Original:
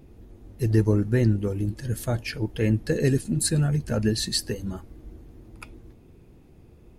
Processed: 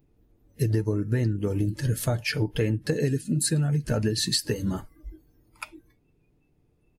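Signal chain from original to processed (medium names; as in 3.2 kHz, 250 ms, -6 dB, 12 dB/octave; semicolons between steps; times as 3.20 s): comb 6.8 ms, depth 32%; compression 12:1, threshold -27 dBFS, peak gain reduction 13.5 dB; spectral noise reduction 21 dB; trim +6 dB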